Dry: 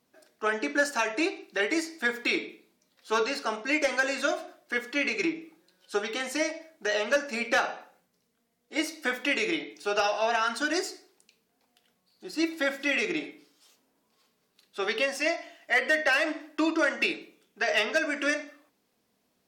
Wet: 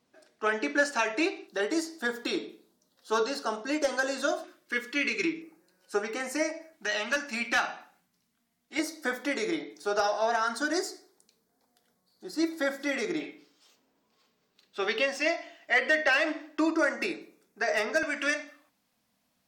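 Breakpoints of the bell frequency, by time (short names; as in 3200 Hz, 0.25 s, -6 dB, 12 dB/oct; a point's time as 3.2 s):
bell -15 dB 0.51 oct
14000 Hz
from 1.48 s 2300 Hz
from 4.44 s 700 Hz
from 5.42 s 3400 Hz
from 6.73 s 490 Hz
from 8.79 s 2700 Hz
from 13.2 s 11000 Hz
from 16.59 s 3100 Hz
from 18.03 s 400 Hz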